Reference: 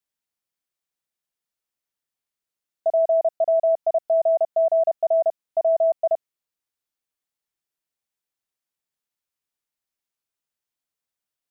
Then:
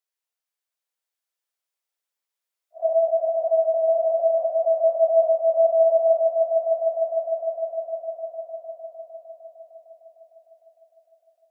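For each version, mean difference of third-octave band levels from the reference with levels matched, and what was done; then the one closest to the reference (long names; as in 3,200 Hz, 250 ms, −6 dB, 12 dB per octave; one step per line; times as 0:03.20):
1.5 dB: random phases in long frames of 200 ms
high-pass filter 420 Hz 24 dB per octave
on a send: echo that builds up and dies away 152 ms, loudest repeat 5, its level −9.5 dB
on the sum: level −1.5 dB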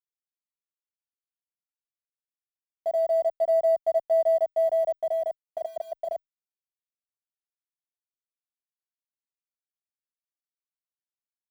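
3.0 dB: mu-law and A-law mismatch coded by A
brickwall limiter −22 dBFS, peak gain reduction 7 dB
barber-pole flanger 10.2 ms −0.27 Hz
level +5.5 dB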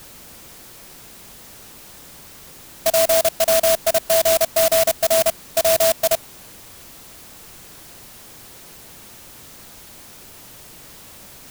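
22.0 dB: converter with a step at zero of −33.5 dBFS
low-shelf EQ 390 Hz +8.5 dB
converter with an unsteady clock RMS 0.15 ms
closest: first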